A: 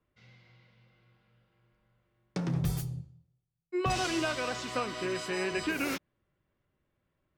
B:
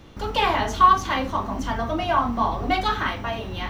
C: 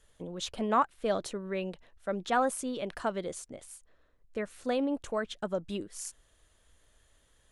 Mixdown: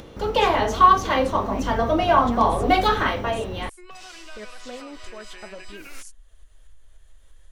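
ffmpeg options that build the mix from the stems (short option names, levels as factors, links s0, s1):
-filter_complex "[0:a]acompressor=threshold=0.0112:ratio=5,highpass=f=1200:p=1,adelay=50,volume=1.26[s0];[1:a]dynaudnorm=f=180:g=7:m=1.5,equalizer=f=490:t=o:w=0.72:g=9.5,volume=0.891[s1];[2:a]asubboost=boost=10:cutoff=52,acompressor=threshold=0.0282:ratio=6,flanger=delay=2.6:depth=8.8:regen=58:speed=0.65:shape=triangular,volume=1.12[s2];[s0][s1][s2]amix=inputs=3:normalize=0,acompressor=mode=upward:threshold=0.0126:ratio=2.5"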